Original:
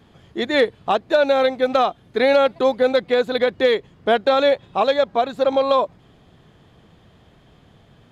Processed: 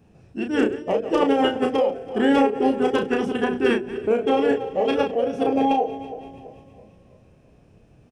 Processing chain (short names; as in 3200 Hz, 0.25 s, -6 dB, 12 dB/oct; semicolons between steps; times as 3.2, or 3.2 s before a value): regenerating reverse delay 0.166 s, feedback 64%, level -12 dB; band shelf 2400 Hz -8.5 dB 2.6 oct; de-hum 49.56 Hz, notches 14; formant shift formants -4 st; doubler 33 ms -5.5 dB; gain -2 dB